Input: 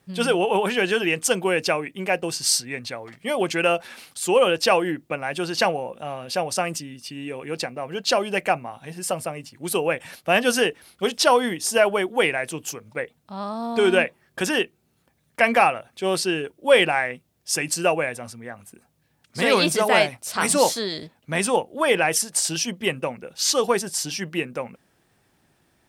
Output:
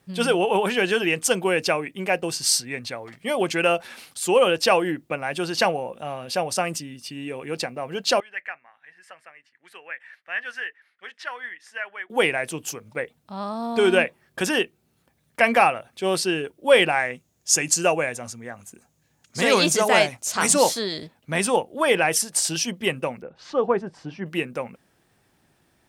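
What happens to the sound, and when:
8.2–12.1 band-pass 1800 Hz, Q 5.5
16.99–20.54 bell 6700 Hz +11.5 dB 0.35 oct
23.22–24.26 LPF 1300 Hz

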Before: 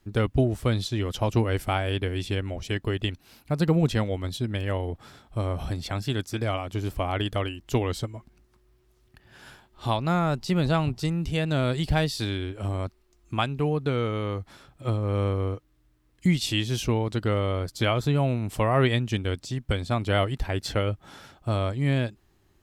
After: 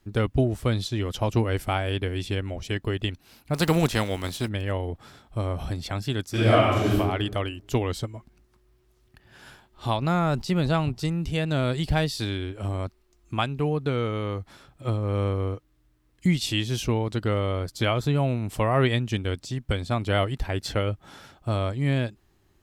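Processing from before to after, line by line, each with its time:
3.53–4.47 spectral contrast lowered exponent 0.65
6.31–6.95 reverb throw, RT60 1.1 s, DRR -9.5 dB
10.02–10.42 fast leveller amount 50%

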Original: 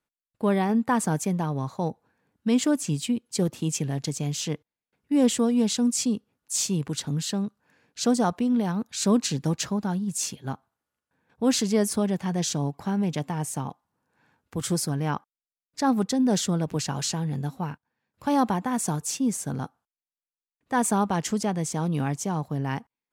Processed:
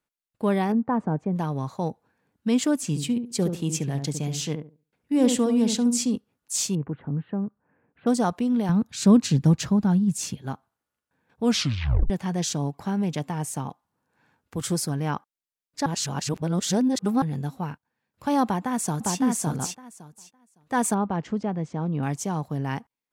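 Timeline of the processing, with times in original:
0.72–1.36 LPF 1000 Hz
2.76–6.16 darkening echo 71 ms, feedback 24%, low-pass 940 Hz, level -6 dB
6.75–8.07 Gaussian blur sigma 5.3 samples
8.69–10.42 tone controls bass +10 dB, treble -3 dB
11.43 tape stop 0.67 s
15.86–17.22 reverse
18.44–19.18 echo throw 0.56 s, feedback 15%, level -2 dB
20.94–22.03 tape spacing loss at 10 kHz 33 dB

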